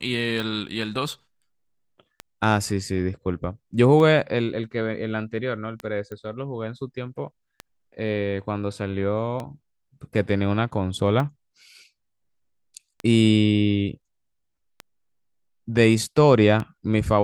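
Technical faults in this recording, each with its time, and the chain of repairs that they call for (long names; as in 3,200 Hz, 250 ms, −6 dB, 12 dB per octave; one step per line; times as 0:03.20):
scratch tick 33 1/3 rpm
0:06.12: click −24 dBFS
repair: click removal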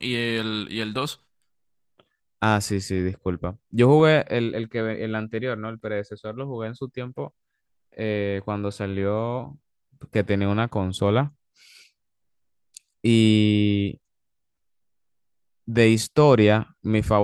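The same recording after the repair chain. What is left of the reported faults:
none of them is left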